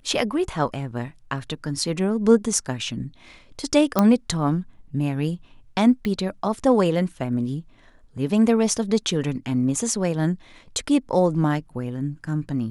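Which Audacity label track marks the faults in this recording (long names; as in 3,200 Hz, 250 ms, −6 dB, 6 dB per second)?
3.990000	3.990000	click −5 dBFS
6.050000	6.050000	click −17 dBFS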